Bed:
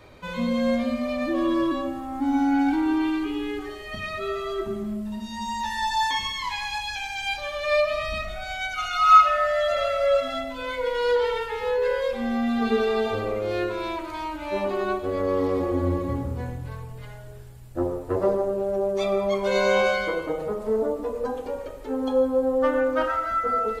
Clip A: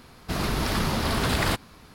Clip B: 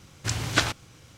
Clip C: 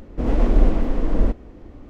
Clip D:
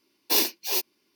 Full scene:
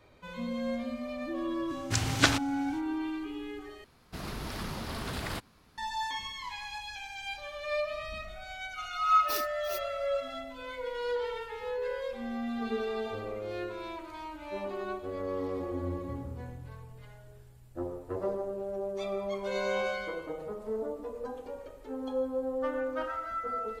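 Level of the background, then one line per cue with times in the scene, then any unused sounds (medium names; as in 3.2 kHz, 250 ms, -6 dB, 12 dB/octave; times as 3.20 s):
bed -10.5 dB
1.66 s: add B -1 dB, fades 0.05 s
3.84 s: replace with A -12 dB
8.98 s: add D -11.5 dB + expander on every frequency bin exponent 2
not used: C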